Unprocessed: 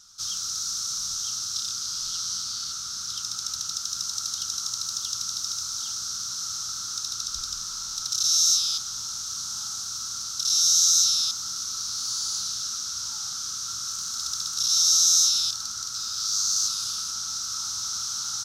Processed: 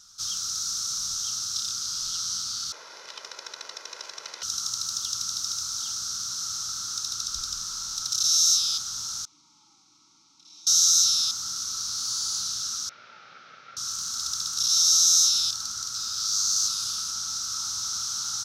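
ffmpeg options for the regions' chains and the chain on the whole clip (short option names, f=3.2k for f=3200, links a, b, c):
-filter_complex "[0:a]asettb=1/sr,asplit=3[a][b][c];[a]atrim=end=2.724[d];[b]atrim=start=2.72:end=4.43,asetpts=PTS-STARTPTS,afade=t=in:d=0.004:c=qsin,afade=t=out:st=1.706:d=0.004:c=qsin,acrusher=bits=5:dc=4:mix=0:aa=0.000001,highpass=490,lowpass=3.2k,aecho=1:1:2:0.48,atrim=end_sample=75411[e];[c]atrim=start=4.426[f];[d][e]acrossfade=d=0.004:c1=hsin:c2=qsin[g];[g][f]acrossfade=d=0.004:c1=qsin:c2=hsin,asettb=1/sr,asplit=3[h][i][j];[h]atrim=end=9.254[k];[i]atrim=start=9.25:end=10.67,asetpts=PTS-STARTPTS,afade=t=in:d=0.004:c=qsin,afade=t=out:st=1.416:d=0.004:c=qsin,asplit=3[l][m][n];[l]bandpass=f=300:t=q:w=8,volume=0dB[o];[m]bandpass=f=870:t=q:w=8,volume=-6dB[p];[n]bandpass=f=2.24k:t=q:w=8,volume=-9dB[q];[o][p][q]amix=inputs=3:normalize=0,aecho=1:1:6.3:0.33,atrim=end_sample=62622[r];[j]atrim=start=10.666[s];[k][r]acrossfade=d=0.004:c1=hsin:c2=qsin[t];[t][s]acrossfade=d=0.004:c1=qsin:c2=hsin,asettb=1/sr,asplit=3[u][v][w];[u]atrim=end=12.894[x];[v]atrim=start=12.89:end=13.77,asetpts=PTS-STARTPTS,afade=t=in:d=0.004:c=qsin,afade=t=out:st=0.876:d=0.004:c=qsin,volume=32.5dB,asoftclip=hard,volume=-32.5dB,highpass=f=160:w=0.5412,highpass=f=160:w=1.3066,equalizer=f=200:t=q:w=4:g=-7,equalizer=f=300:t=q:w=4:g=-5,equalizer=f=560:t=q:w=4:g=5,equalizer=f=1k:t=q:w=4:g=-8,equalizer=f=1.5k:t=q:w=4:g=3,equalizer=f=2.3k:t=q:w=4:g=5,lowpass=f=2.6k:w=0.5412,lowpass=f=2.6k:w=1.3066[y];[w]atrim=start=13.766[z];[x][y]acrossfade=d=0.004:c1=hsin:c2=qsin[aa];[aa][z]acrossfade=d=0.004:c1=qsin:c2=hsin"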